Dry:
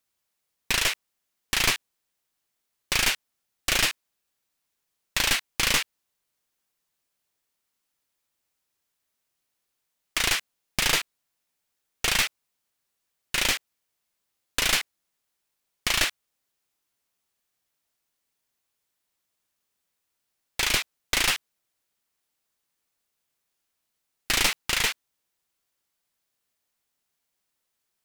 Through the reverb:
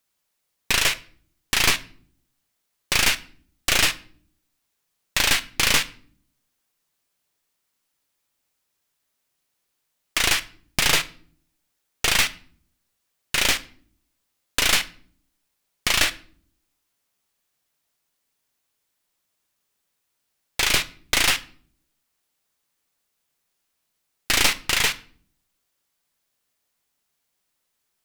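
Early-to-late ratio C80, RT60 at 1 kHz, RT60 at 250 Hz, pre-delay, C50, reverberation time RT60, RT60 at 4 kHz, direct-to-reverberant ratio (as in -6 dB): 22.5 dB, 0.45 s, 0.90 s, 7 ms, 18.5 dB, 0.55 s, 0.40 s, 12.0 dB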